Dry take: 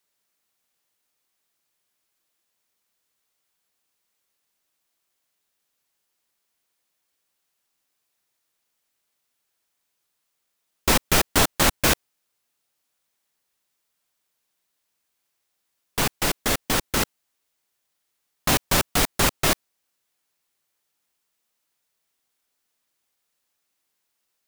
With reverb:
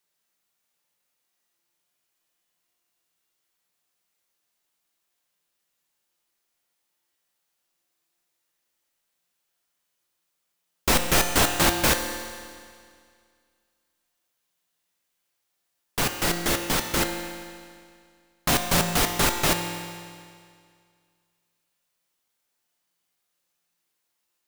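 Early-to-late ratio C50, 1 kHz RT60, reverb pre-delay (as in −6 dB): 5.5 dB, 2.1 s, 6 ms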